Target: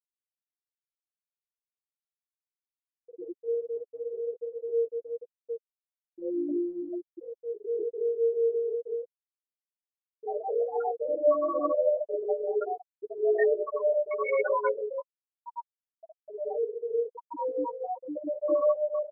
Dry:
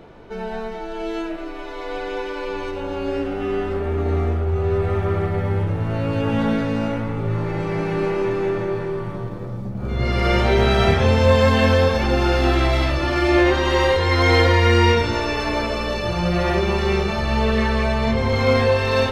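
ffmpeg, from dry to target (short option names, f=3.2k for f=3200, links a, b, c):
-filter_complex "[0:a]asettb=1/sr,asplit=3[a][b][c];[a]atrim=end=7.124[d];[b]atrim=start=7.12:end=7.89,asetpts=PTS-STARTPTS,afade=t=in:d=0.004:c=qsin,afade=t=out:st=0.766:d=0.004:c=qsin,acontrast=21[e];[c]atrim=start=7.886[f];[d][e]acrossfade=d=0.004:c1=hsin:c2=qsin[g];[g][f]acrossfade=d=0.004:c1=qsin:c2=hsin,asplit=3[h][i][j];[h]afade=t=out:st=14.7:d=0.02[k];[i]aeval=exprs='max(val(0),0)':c=same,afade=t=in:st=14.7:d=0.02,afade=t=out:st=15.38:d=0.02[l];[j]afade=t=in:st=15.38:d=0.02[m];[k][l][m]amix=inputs=3:normalize=0,asplit=2[n][o];[o]adelay=140,lowpass=f=1.7k:p=1,volume=-8.5dB,asplit=2[p][q];[q]adelay=140,lowpass=f=1.7k:p=1,volume=0.35,asplit=2[r][s];[s]adelay=140,lowpass=f=1.7k:p=1,volume=0.35,asplit=2[t][u];[u]adelay=140,lowpass=f=1.7k:p=1,volume=0.35[v];[n][p][r][t][v]amix=inputs=5:normalize=0,highpass=f=240:t=q:w=0.5412,highpass=f=240:t=q:w=1.307,lowpass=f=2.1k:t=q:w=0.5176,lowpass=f=2.1k:t=q:w=0.7071,lowpass=f=2.1k:t=q:w=1.932,afreqshift=72,afftfilt=real='re*gte(hypot(re,im),0.562)':imag='im*gte(hypot(re,im),0.562)':win_size=1024:overlap=0.75,flanger=delay=5.4:depth=5.4:regen=-8:speed=1.1:shape=triangular,volume=-2.5dB"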